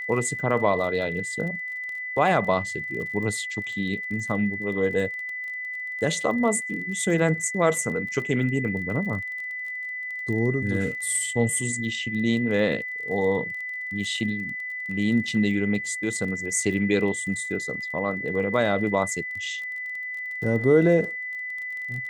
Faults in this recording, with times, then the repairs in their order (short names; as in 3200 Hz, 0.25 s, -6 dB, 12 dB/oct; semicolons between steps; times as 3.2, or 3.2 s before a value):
crackle 27/s -34 dBFS
tone 2000 Hz -30 dBFS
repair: de-click; notch 2000 Hz, Q 30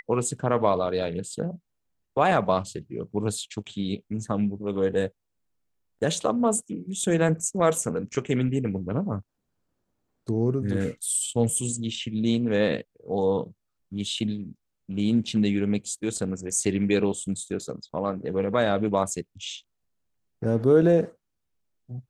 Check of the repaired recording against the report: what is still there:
none